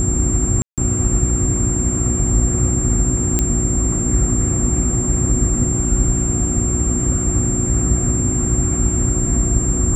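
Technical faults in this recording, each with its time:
hum 60 Hz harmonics 6 -22 dBFS
whine 7.4 kHz -21 dBFS
0.62–0.78 s: dropout 157 ms
3.39 s: pop -3 dBFS

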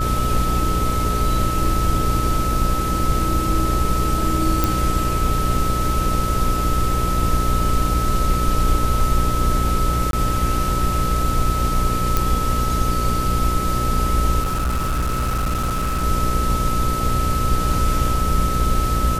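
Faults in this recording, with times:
buzz 60 Hz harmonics 10 -23 dBFS
whine 1.3 kHz -23 dBFS
4.64 s: pop
10.11–10.13 s: dropout 22 ms
12.17 s: pop
14.42–16.04 s: clipped -17.5 dBFS

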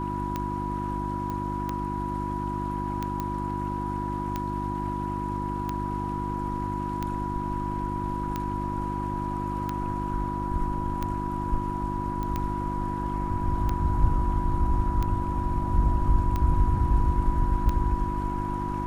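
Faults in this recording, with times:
hum 50 Hz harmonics 7 -32 dBFS
tick 45 rpm -16 dBFS
whine 980 Hz -31 dBFS
1.30 s: pop -21 dBFS
3.20 s: pop -17 dBFS
12.23 s: pop -20 dBFS

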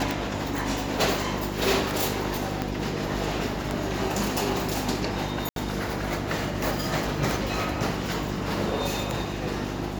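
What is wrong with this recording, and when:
hum 50 Hz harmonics 7 -33 dBFS
tick
2.62 s: pop -13 dBFS
5.49–5.56 s: dropout 72 ms

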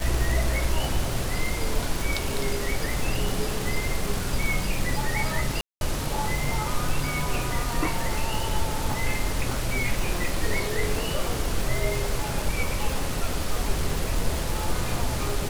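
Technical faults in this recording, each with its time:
crackle 480 per s -28 dBFS
5.61–5.81 s: dropout 201 ms

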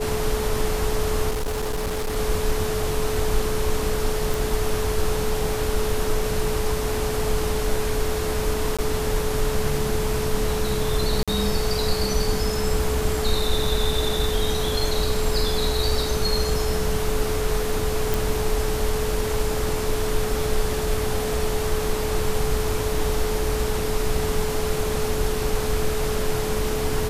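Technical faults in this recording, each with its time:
whine 430 Hz -26 dBFS
1.30–2.17 s: clipped -22 dBFS
4.34 s: pop
8.77–8.79 s: dropout 16 ms
11.23–11.28 s: dropout 46 ms
18.14 s: pop

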